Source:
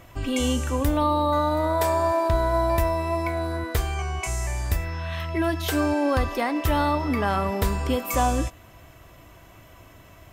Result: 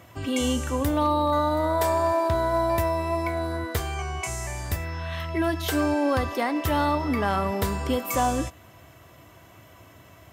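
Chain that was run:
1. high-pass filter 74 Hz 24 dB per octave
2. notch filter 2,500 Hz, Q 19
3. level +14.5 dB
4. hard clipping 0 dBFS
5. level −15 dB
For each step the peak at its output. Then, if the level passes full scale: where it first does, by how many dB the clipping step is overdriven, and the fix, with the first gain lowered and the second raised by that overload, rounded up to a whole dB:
−10.0, −10.0, +4.5, 0.0, −15.0 dBFS
step 3, 4.5 dB
step 3 +9.5 dB, step 5 −10 dB

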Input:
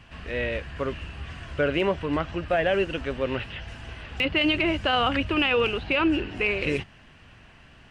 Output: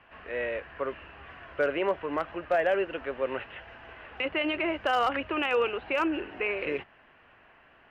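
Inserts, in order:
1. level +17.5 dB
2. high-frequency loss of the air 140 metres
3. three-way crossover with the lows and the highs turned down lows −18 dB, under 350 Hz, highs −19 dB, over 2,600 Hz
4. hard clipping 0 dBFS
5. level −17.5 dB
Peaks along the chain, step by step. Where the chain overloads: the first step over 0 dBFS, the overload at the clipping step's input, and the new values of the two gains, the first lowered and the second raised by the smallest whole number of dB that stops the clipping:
+4.5, +4.0, +4.5, 0.0, −17.5 dBFS
step 1, 4.5 dB
step 1 +12.5 dB, step 5 −12.5 dB

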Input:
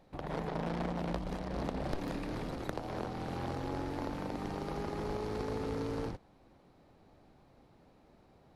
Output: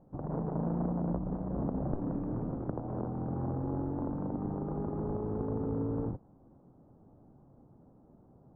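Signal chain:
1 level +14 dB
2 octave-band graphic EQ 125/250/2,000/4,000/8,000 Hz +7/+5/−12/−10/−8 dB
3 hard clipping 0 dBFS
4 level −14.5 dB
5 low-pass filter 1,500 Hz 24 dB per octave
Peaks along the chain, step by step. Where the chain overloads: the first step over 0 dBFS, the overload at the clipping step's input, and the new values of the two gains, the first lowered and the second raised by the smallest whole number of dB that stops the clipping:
−8.0, −5.0, −5.0, −19.5, −19.5 dBFS
no step passes full scale

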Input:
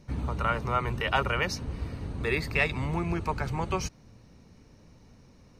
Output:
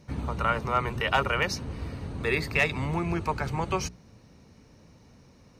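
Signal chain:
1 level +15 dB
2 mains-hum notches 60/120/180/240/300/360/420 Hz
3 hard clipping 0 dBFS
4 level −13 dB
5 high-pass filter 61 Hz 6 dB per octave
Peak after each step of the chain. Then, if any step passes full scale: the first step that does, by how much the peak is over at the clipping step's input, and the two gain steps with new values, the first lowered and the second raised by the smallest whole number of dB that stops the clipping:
+3.5, +3.5, 0.0, −13.0, −12.0 dBFS
step 1, 3.5 dB
step 1 +11 dB, step 4 −9 dB

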